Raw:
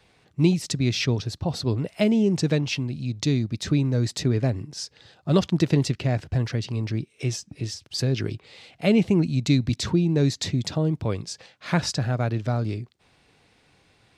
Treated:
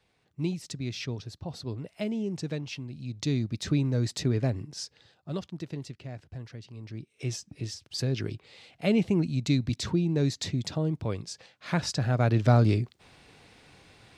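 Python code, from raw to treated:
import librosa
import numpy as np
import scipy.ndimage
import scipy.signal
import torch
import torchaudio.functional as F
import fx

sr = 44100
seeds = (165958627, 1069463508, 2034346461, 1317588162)

y = fx.gain(x, sr, db=fx.line((2.84, -11.0), (3.42, -4.0), (4.83, -4.0), (5.48, -16.5), (6.75, -16.5), (7.32, -5.0), (11.85, -5.0), (12.52, 5.0)))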